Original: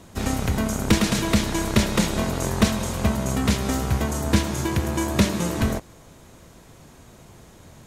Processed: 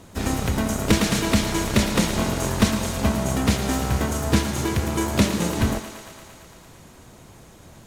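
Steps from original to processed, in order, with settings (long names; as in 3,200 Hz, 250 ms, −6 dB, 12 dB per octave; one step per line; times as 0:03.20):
feedback echo with a high-pass in the loop 114 ms, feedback 78%, high-pass 270 Hz, level −10.5 dB
pitch-shifted copies added +4 semitones −14 dB, +5 semitones −13 dB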